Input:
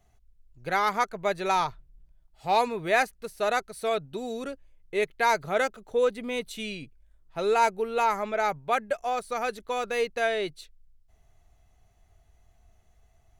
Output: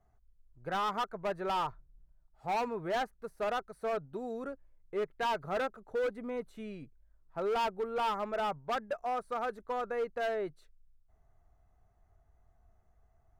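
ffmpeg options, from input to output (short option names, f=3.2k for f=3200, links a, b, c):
-filter_complex "[0:a]highshelf=f=2k:t=q:w=1.5:g=-12,acrossover=split=2700[a][b];[b]acompressor=threshold=-56dB:ratio=4:attack=1:release=60[c];[a][c]amix=inputs=2:normalize=0,volume=23dB,asoftclip=hard,volume=-23dB,volume=-5.5dB"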